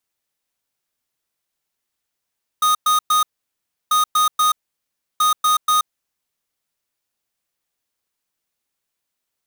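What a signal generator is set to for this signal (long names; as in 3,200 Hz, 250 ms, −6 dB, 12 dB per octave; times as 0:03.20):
beeps in groups square 1,240 Hz, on 0.13 s, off 0.11 s, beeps 3, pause 0.68 s, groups 3, −15.5 dBFS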